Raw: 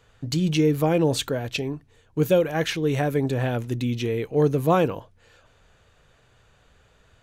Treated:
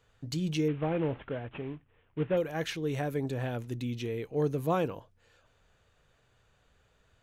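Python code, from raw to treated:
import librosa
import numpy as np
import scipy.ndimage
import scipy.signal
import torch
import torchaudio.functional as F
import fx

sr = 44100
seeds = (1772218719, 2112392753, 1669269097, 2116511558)

y = fx.cvsd(x, sr, bps=16000, at=(0.68, 2.37))
y = y * librosa.db_to_amplitude(-9.0)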